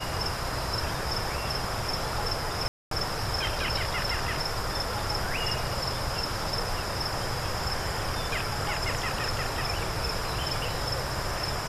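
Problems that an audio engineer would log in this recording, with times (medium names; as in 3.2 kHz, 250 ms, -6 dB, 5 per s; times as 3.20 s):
2.68–2.91 s: dropout 233 ms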